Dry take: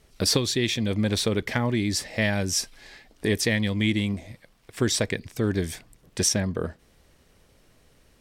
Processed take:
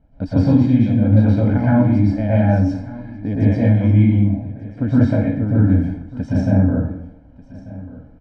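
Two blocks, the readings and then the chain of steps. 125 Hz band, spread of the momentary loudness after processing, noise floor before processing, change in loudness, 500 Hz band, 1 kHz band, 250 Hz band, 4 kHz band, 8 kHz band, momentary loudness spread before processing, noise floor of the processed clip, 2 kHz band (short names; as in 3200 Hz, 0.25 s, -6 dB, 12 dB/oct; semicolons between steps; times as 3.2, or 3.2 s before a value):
+14.5 dB, 15 LU, -60 dBFS, +9.0 dB, +4.0 dB, +7.5 dB, +12.0 dB, under -15 dB, under -25 dB, 11 LU, -45 dBFS, -4.0 dB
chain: Bessel low-pass 680 Hz, order 2; bell 280 Hz +13.5 dB 0.36 oct; comb 1.3 ms, depth 96%; on a send: echo 1.191 s -18.5 dB; on the sum: plate-style reverb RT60 0.74 s, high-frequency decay 0.65×, pre-delay 0.105 s, DRR -8 dB; gain -1.5 dB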